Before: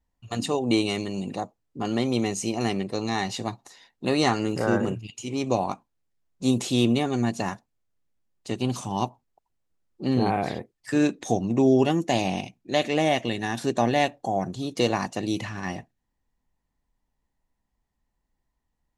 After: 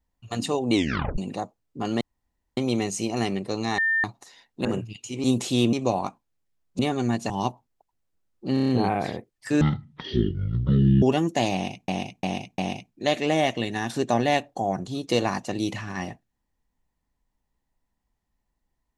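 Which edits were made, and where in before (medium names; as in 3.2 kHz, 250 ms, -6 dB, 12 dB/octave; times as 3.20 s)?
0.74 s: tape stop 0.44 s
2.01 s: insert room tone 0.56 s
3.22–3.48 s: bleep 1.8 kHz -19.5 dBFS
4.09–4.79 s: delete
6.44–6.93 s: move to 5.38 s
7.44–8.87 s: delete
10.11 s: stutter 0.03 s, 6 plays
11.03–11.75 s: speed 51%
12.26–12.61 s: loop, 4 plays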